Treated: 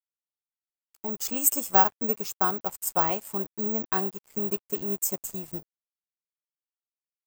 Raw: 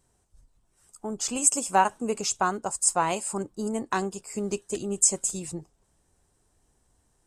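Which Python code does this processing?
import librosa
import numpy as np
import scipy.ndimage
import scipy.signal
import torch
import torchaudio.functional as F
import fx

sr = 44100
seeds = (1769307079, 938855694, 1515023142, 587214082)

y = fx.high_shelf(x, sr, hz=3100.0, db=fx.steps((0.0, -3.0), (1.81, -10.0)))
y = np.sign(y) * np.maximum(np.abs(y) - 10.0 ** (-46.0 / 20.0), 0.0)
y = (np.kron(y[::2], np.eye(2)[0]) * 2)[:len(y)]
y = F.gain(torch.from_numpy(y), -1.0).numpy()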